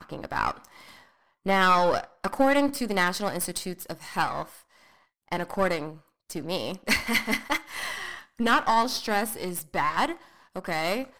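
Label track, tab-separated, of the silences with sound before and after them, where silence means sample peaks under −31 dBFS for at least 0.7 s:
0.520000	1.460000	silence
4.430000	5.320000	silence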